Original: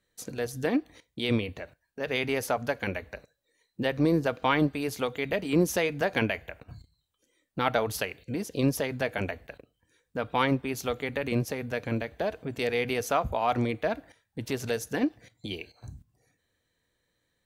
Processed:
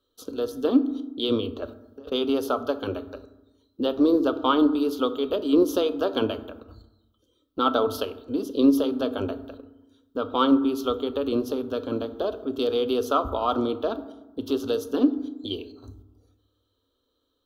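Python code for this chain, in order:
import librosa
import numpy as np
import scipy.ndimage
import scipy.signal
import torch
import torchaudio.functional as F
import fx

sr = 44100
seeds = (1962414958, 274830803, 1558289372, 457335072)

y = fx.curve_eq(x, sr, hz=(100.0, 150.0, 250.0, 410.0, 820.0, 1300.0, 2000.0, 3200.0, 8200.0, 14000.0), db=(0, -23, 5, 7, -3, 9, -28, 7, -11, 0))
y = fx.over_compress(y, sr, threshold_db=-36.0, ratio=-0.5, at=(1.62, 2.12))
y = fx.rev_fdn(y, sr, rt60_s=1.0, lf_ratio=1.4, hf_ratio=0.4, size_ms=22.0, drr_db=10.5)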